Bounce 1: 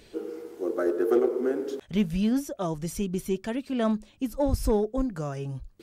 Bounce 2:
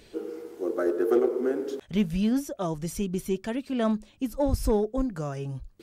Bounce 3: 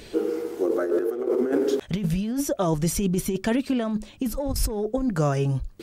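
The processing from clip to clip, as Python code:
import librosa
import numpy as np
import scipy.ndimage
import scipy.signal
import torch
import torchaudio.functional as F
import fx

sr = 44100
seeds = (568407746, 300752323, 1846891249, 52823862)

y1 = x
y2 = fx.over_compress(y1, sr, threshold_db=-30.0, ratio=-1.0)
y2 = y2 * 10.0 ** (6.5 / 20.0)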